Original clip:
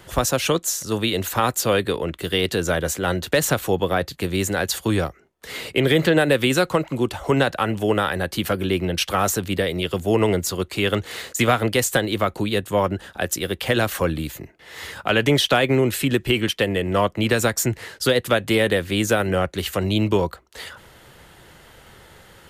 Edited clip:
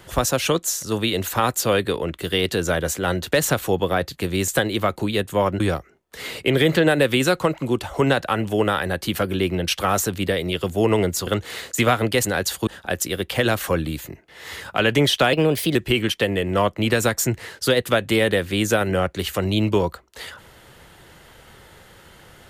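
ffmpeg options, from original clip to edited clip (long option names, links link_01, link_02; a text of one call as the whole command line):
ffmpeg -i in.wav -filter_complex "[0:a]asplit=8[link_01][link_02][link_03][link_04][link_05][link_06][link_07][link_08];[link_01]atrim=end=4.482[link_09];[link_02]atrim=start=11.858:end=12.982[link_10];[link_03]atrim=start=4.898:end=10.572[link_11];[link_04]atrim=start=10.878:end=11.862[link_12];[link_05]atrim=start=4.478:end=4.902[link_13];[link_06]atrim=start=12.978:end=15.644[link_14];[link_07]atrim=start=15.64:end=16.14,asetpts=PTS-STARTPTS,asetrate=52479,aresample=44100,atrim=end_sample=18529,asetpts=PTS-STARTPTS[link_15];[link_08]atrim=start=16.136[link_16];[link_09][link_10]acrossfade=duration=0.004:curve1=hsin:curve2=hsin[link_17];[link_17][link_11]acrossfade=duration=0.004:curve1=hsin:curve2=hsin[link_18];[link_18][link_12]acrossfade=duration=0.004:curve1=hsin:curve2=hsin[link_19];[link_19][link_13]acrossfade=duration=0.004:curve1=hsin:curve2=hsin[link_20];[link_20][link_14]acrossfade=duration=0.004:curve1=hsin:curve2=hsin[link_21];[link_21][link_15]acrossfade=duration=0.004:curve1=hsin:curve2=hsin[link_22];[link_22][link_16]acrossfade=duration=0.004:curve1=hsin:curve2=hsin" out.wav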